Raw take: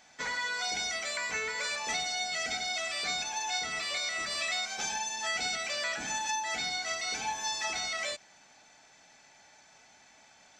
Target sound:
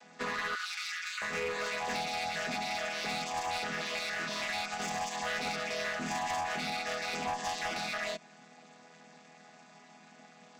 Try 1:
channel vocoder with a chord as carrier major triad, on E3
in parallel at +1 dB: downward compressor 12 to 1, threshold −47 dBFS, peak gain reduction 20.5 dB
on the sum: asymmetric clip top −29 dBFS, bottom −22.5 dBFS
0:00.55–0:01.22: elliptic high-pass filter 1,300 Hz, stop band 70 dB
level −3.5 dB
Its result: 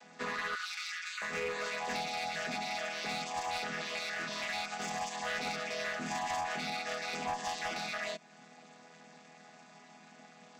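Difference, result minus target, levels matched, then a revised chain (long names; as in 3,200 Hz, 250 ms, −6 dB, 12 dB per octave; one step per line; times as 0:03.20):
downward compressor: peak gain reduction +9.5 dB
channel vocoder with a chord as carrier major triad, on E3
in parallel at +1 dB: downward compressor 12 to 1, threshold −36.5 dBFS, peak gain reduction 10.5 dB
on the sum: asymmetric clip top −29 dBFS, bottom −22.5 dBFS
0:00.55–0:01.22: elliptic high-pass filter 1,300 Hz, stop band 70 dB
level −3.5 dB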